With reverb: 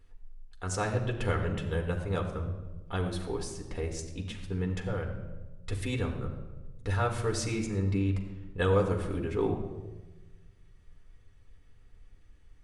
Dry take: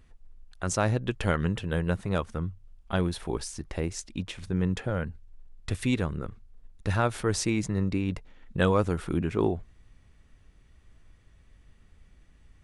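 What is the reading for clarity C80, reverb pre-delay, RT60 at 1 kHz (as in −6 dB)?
9.0 dB, 4 ms, 1.0 s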